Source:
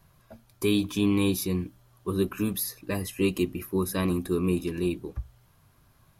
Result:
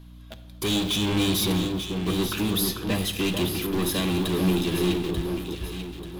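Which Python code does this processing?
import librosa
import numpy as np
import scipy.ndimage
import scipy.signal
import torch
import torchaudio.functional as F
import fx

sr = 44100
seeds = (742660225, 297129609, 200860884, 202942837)

p1 = fx.zero_step(x, sr, step_db=-37.5, at=(0.65, 1.55))
p2 = fx.quant_companded(p1, sr, bits=2)
p3 = p1 + (p2 * 10.0 ** (-8.0 / 20.0))
p4 = fx.peak_eq(p3, sr, hz=3400.0, db=14.5, octaves=0.66)
p5 = 10.0 ** (-21.5 / 20.0) * np.tanh(p4 / 10.0 ** (-21.5 / 20.0))
p6 = fx.add_hum(p5, sr, base_hz=60, snr_db=17)
p7 = fx.echo_alternate(p6, sr, ms=444, hz=1500.0, feedback_pct=63, wet_db=-4.0)
y = fx.room_shoebox(p7, sr, seeds[0], volume_m3=1700.0, walls='mixed', distance_m=0.61)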